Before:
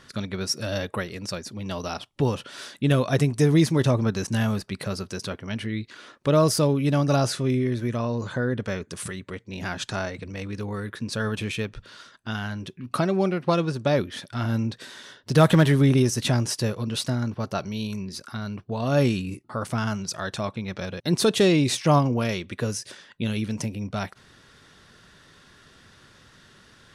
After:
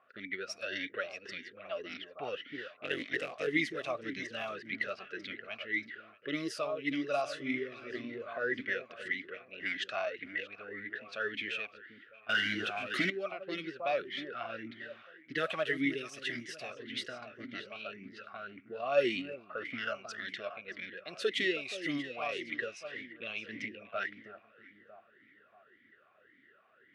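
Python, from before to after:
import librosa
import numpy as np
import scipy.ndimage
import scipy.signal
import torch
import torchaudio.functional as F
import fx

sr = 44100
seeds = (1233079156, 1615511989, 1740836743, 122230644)

y = fx.cycle_switch(x, sr, every=3, mode='muted', at=(2.72, 3.46), fade=0.02)
y = fx.tilt_shelf(y, sr, db=-8.0, hz=1100.0)
y = fx.echo_alternate(y, sr, ms=317, hz=1300.0, feedback_pct=60, wet_db=-8.5)
y = fx.leveller(y, sr, passes=5, at=(12.29, 13.1))
y = fx.peak_eq(y, sr, hz=2000.0, db=12.5, octaves=0.34)
y = fx.env_lowpass(y, sr, base_hz=920.0, full_db=-19.0)
y = fx.rider(y, sr, range_db=4, speed_s=2.0)
y = fx.vowel_sweep(y, sr, vowels='a-i', hz=1.8)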